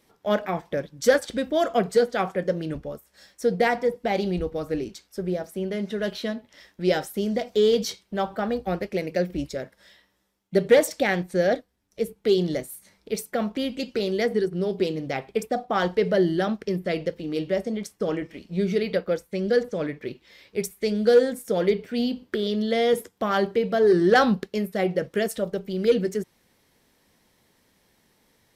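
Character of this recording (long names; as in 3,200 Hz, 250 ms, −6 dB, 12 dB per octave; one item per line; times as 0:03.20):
background noise floor −67 dBFS
spectral slope −4.5 dB per octave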